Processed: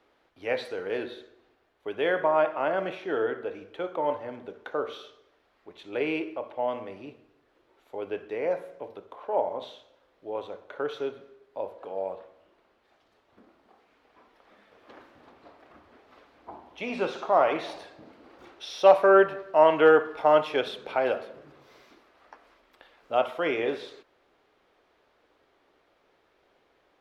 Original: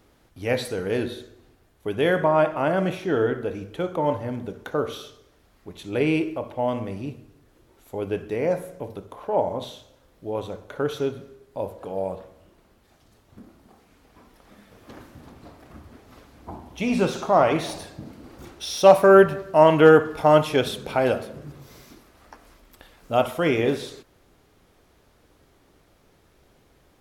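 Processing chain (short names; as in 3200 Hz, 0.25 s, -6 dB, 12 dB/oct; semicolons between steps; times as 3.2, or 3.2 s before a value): three-band isolator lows -18 dB, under 330 Hz, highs -19 dB, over 4300 Hz; gain -3 dB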